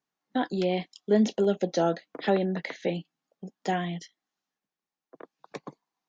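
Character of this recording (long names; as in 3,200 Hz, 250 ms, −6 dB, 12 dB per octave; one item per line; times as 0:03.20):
background noise floor −92 dBFS
spectral slope −5.5 dB per octave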